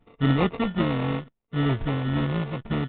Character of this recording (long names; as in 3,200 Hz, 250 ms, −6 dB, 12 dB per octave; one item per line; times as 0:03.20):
a buzz of ramps at a fixed pitch in blocks of 32 samples
phaser sweep stages 6, 0.71 Hz, lowest notch 460–1,700 Hz
aliases and images of a low sample rate 1,600 Hz, jitter 0%
IMA ADPCM